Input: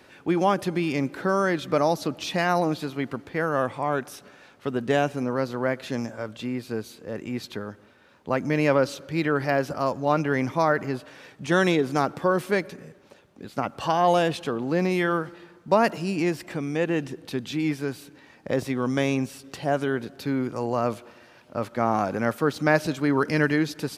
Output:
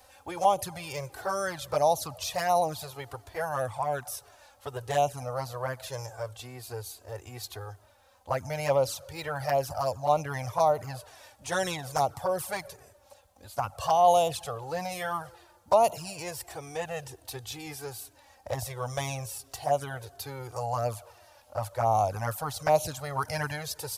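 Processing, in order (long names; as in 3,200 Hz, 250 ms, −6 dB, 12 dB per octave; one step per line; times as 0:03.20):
drawn EQ curve 100 Hz 0 dB, 200 Hz −22 dB, 330 Hz −23 dB, 530 Hz −8 dB, 760 Hz −1 dB, 1,400 Hz −11 dB, 2,200 Hz −13 dB, 11,000 Hz +6 dB
flanger swept by the level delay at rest 4 ms, full sweep at −24.5 dBFS
level +6.5 dB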